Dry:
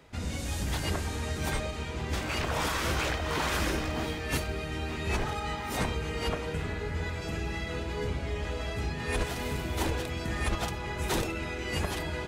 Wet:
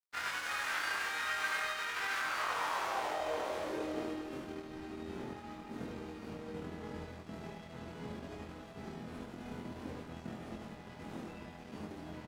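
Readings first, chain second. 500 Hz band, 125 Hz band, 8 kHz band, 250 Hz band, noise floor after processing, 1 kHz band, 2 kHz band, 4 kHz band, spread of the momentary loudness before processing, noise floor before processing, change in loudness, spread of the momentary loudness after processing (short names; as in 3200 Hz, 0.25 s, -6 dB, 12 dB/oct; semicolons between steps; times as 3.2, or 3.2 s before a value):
-8.0 dB, -17.5 dB, -10.5 dB, -8.0 dB, -51 dBFS, -4.0 dB, -3.5 dB, -8.5 dB, 5 LU, -36 dBFS, -7.5 dB, 13 LU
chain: spectral whitening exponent 0.3; limiter -22 dBFS, peak gain reduction 7 dB; band-pass sweep 1500 Hz -> 230 Hz, 2.12–4.72; crossover distortion -55.5 dBFS; doubler 23 ms -2 dB; on a send: echo 74 ms -6 dB; on the sum: gain +5.5 dB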